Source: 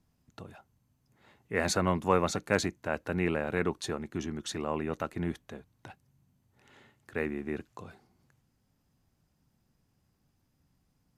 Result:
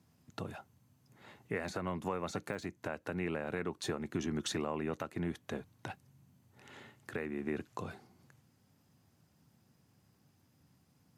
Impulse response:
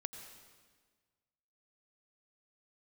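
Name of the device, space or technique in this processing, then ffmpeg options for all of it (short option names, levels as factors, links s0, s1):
podcast mastering chain: -af "highpass=f=84:w=0.5412,highpass=f=84:w=1.3066,deesser=0.85,acompressor=threshold=0.0158:ratio=4,alimiter=level_in=1.78:limit=0.0631:level=0:latency=1:release=477,volume=0.562,volume=1.88" -ar 44100 -c:a libmp3lame -b:a 96k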